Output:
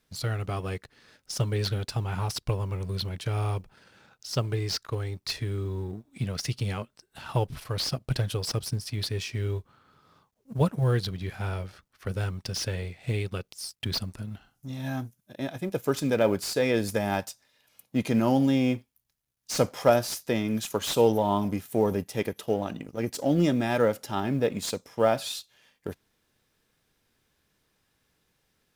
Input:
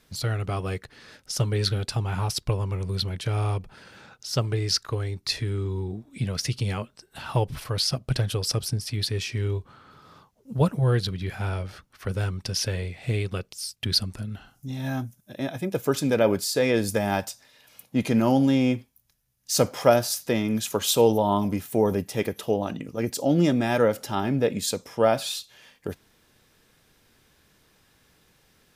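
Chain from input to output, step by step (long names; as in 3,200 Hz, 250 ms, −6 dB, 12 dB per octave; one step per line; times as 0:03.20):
mu-law and A-law mismatch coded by A
slew-rate limiting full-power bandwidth 280 Hz
level −2 dB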